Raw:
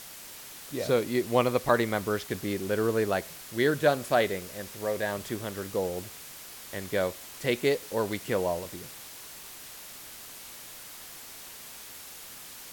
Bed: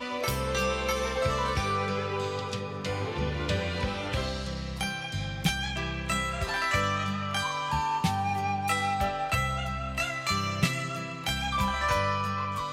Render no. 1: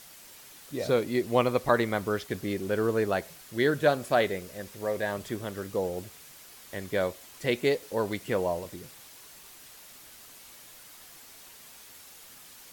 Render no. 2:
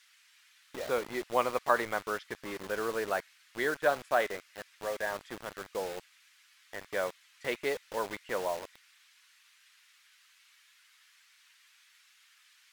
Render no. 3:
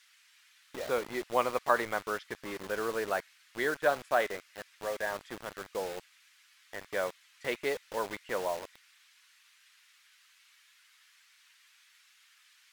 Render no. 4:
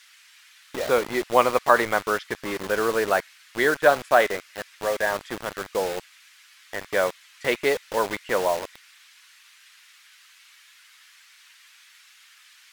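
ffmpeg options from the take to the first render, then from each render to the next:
-af "afftdn=nr=6:nf=-45"
-filter_complex "[0:a]bandpass=f=1.2k:t=q:w=0.89:csg=0,acrossover=split=1600[a][b];[a]acrusher=bits=6:mix=0:aa=0.000001[c];[c][b]amix=inputs=2:normalize=0"
-af anull
-af "volume=10dB,alimiter=limit=-3dB:level=0:latency=1"

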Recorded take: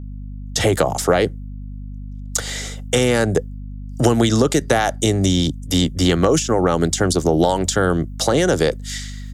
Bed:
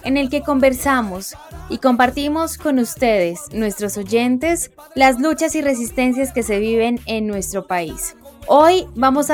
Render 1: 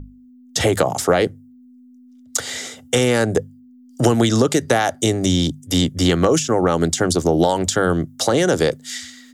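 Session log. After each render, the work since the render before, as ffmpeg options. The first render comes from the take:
-af "bandreject=f=50:t=h:w=6,bandreject=f=100:t=h:w=6,bandreject=f=150:t=h:w=6,bandreject=f=200:t=h:w=6"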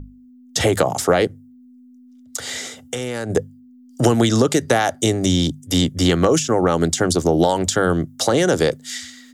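-filter_complex "[0:a]asplit=3[a][b][c];[a]afade=t=out:st=1.26:d=0.02[d];[b]acompressor=threshold=-22dB:ratio=6:attack=3.2:release=140:knee=1:detection=peak,afade=t=in:st=1.26:d=0.02,afade=t=out:st=3.29:d=0.02[e];[c]afade=t=in:st=3.29:d=0.02[f];[d][e][f]amix=inputs=3:normalize=0"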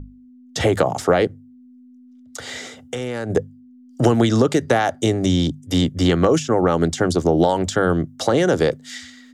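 -af "lowpass=f=2.9k:p=1"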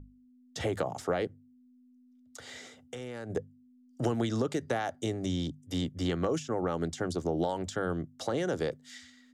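-af "volume=-14dB"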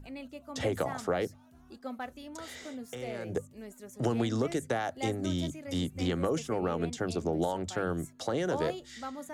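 -filter_complex "[1:a]volume=-26dB[a];[0:a][a]amix=inputs=2:normalize=0"

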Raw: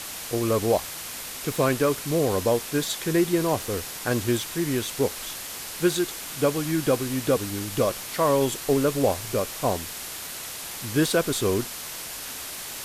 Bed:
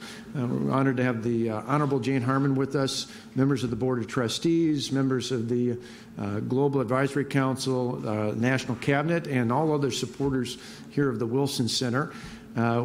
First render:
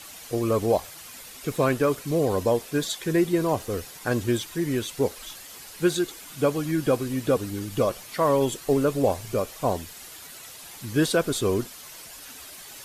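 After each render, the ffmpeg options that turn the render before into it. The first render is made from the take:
-af "afftdn=nr=10:nf=-36"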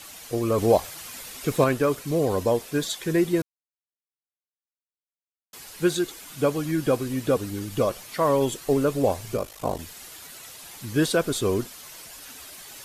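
-filter_complex "[0:a]asettb=1/sr,asplit=3[a][b][c];[a]atrim=end=9.364[d];[b]atrim=start=9.36:end=9.8,asetpts=PTS-STARTPTS,afade=t=in:d=0.004:c=qsin,afade=t=out:st=0.436:d=0.004:c=qsin,aeval=exprs='val(0)*sin(2*PI*26*n/s)':c=same[e];[c]atrim=start=9.796[f];[d][e]acrossfade=d=0.004:c1=hsin:c2=qsin[g];[g][f]acrossfade=d=0.004:c1=qsin:c2=hsin,asplit=5[h][i][j][k][l];[h]atrim=end=0.582[m];[i]atrim=start=0.578:end=1.642,asetpts=PTS-STARTPTS,volume=3.5dB[n];[j]atrim=start=1.638:end=3.42,asetpts=PTS-STARTPTS,afade=t=out:st=1.778:d=0.004:c=hsin[o];[k]atrim=start=3.42:end=5.53,asetpts=PTS-STARTPTS,volume=0[p];[l]atrim=start=5.53,asetpts=PTS-STARTPTS,afade=t=in:d=0.004:c=hsin[q];[m][n]acrossfade=d=0.004:c1=hsin:c2=hsin[r];[o][p][q]concat=n=3:v=0:a=1[s];[r][s]acrossfade=d=0.004:c1=hsin:c2=hsin"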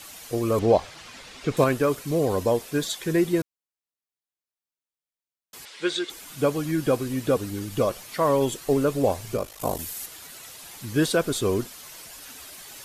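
-filter_complex "[0:a]asettb=1/sr,asplit=3[a][b][c];[a]atrim=end=0.594[d];[b]atrim=start=0.59:end=1.57,asetpts=PTS-STARTPTS,afade=t=in:d=0.004:c=qsin,afade=t=out:st=0.976:d=0.004:c=qsin,lowpass=4.7k[e];[c]atrim=start=1.566[f];[d][e]acrossfade=d=0.004:c1=hsin:c2=qsin[g];[g][f]acrossfade=d=0.004:c1=qsin:c2=hsin,asettb=1/sr,asplit=3[h][i][j];[h]atrim=end=5.654[k];[i]atrim=start=5.65:end=6.1,asetpts=PTS-STARTPTS,afade=t=in:d=0.004:c=qsin,afade=t=out:st=0.446:d=0.004:c=qsin,highpass=410,equalizer=f=730:t=q:w=4:g=-6,equalizer=f=2.1k:t=q:w=4:g=6,equalizer=f=3.4k:t=q:w=4:g=7,equalizer=f=6.6k:t=q:w=4:g=-5,lowpass=f=7.5k:w=0.5412,lowpass=f=7.5k:w=1.3066[l];[j]atrim=start=6.096[m];[k][l]acrossfade=d=0.004:c1=hsin:c2=qsin[n];[n][m]acrossfade=d=0.004:c1=qsin:c2=hsin,asettb=1/sr,asplit=3[o][p][q];[o]atrim=end=9.604[r];[p]atrim=start=9.6:end=10.06,asetpts=PTS-STARTPTS,afade=t=in:d=0.004:c=qsin,afade=t=out:st=0.456:d=0.004:c=qsin,equalizer=f=13k:t=o:w=1.4:g=11.5[s];[q]atrim=start=10.056[t];[r][s]acrossfade=d=0.004:c1=hsin:c2=qsin[u];[u][t]acrossfade=d=0.004:c1=qsin:c2=hsin"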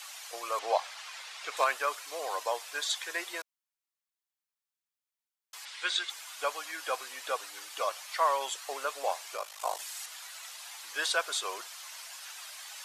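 -filter_complex "[0:a]acrossover=split=8800[a][b];[b]acompressor=threshold=-55dB:ratio=4:attack=1:release=60[c];[a][c]amix=inputs=2:normalize=0,highpass=f=770:w=0.5412,highpass=f=770:w=1.3066"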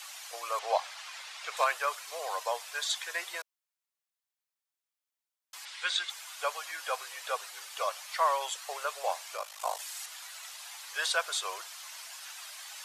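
-af "highpass=f=480:w=0.5412,highpass=f=480:w=1.3066"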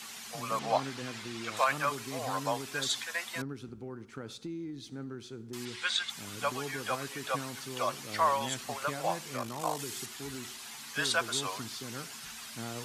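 -filter_complex "[1:a]volume=-16.5dB[a];[0:a][a]amix=inputs=2:normalize=0"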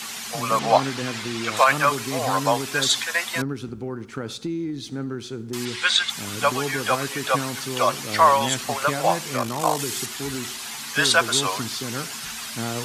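-af "volume=11.5dB,alimiter=limit=-3dB:level=0:latency=1"

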